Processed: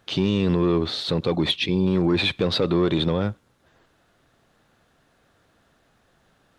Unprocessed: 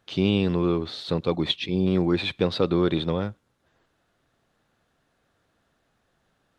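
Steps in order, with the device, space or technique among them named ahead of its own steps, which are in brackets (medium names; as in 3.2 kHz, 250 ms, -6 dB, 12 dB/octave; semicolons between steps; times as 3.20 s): soft clipper into limiter (saturation -14 dBFS, distortion -18 dB; peak limiter -20.5 dBFS, peak gain reduction 6 dB); trim +7.5 dB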